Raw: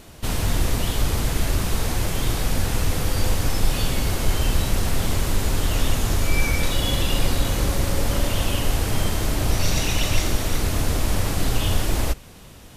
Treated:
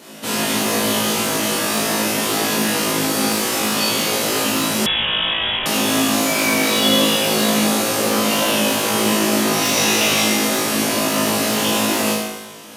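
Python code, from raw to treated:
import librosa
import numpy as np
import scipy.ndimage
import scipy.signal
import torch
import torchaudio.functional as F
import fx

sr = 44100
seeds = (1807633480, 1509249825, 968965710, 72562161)

y = np.minimum(x, 2.0 * 10.0 ** (-13.0 / 20.0) - x)
y = scipy.signal.sosfilt(scipy.signal.butter(4, 190.0, 'highpass', fs=sr, output='sos'), y)
y = fx.room_flutter(y, sr, wall_m=3.2, rt60_s=0.56)
y = fx.rev_gated(y, sr, seeds[0], gate_ms=380, shape='falling', drr_db=1.0)
y = fx.freq_invert(y, sr, carrier_hz=3600, at=(4.86, 5.66))
y = y * 10.0 ** (3.0 / 20.0)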